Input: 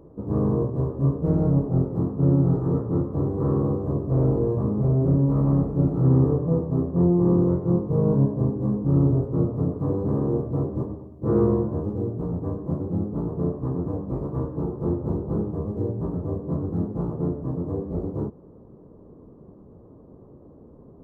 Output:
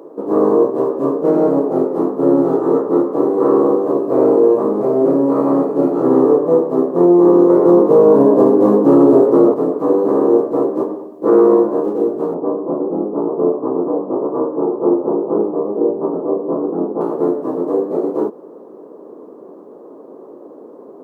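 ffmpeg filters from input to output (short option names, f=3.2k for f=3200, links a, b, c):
-filter_complex "[0:a]asettb=1/sr,asplit=3[a][b][c];[a]atrim=end=12.344[d];[b]atrim=start=12.34:end=17.01,asetpts=PTS-STARTPTS,afade=t=in:d=0.004:c=qsin,afade=t=out:st=4.666:d=0.004:c=qsin,lowpass=f=1.2k:w=0.5412,lowpass=f=1.2k:w=1.3066[e];[c]atrim=start=17.006[f];[d][e]acrossfade=d=0.004:c1=hsin:c2=qsin[g];[g][f]acrossfade=d=0.004:c1=qsin:c2=hsin,asplit=3[h][i][j];[h]atrim=end=7.502[k];[i]atrim=start=7.498:end=9.542,asetpts=PTS-STARTPTS,volume=8dB[l];[j]atrim=start=9.538[m];[k][l]acrossfade=d=0.004:c1=hsin:c2=hsin[n];[n][m]acrossfade=d=0.004:c1=hsin:c2=hsin,highpass=f=320:w=0.5412,highpass=f=320:w=1.3066,alimiter=level_in=16.5dB:limit=-1dB:release=50:level=0:latency=1,volume=-1dB"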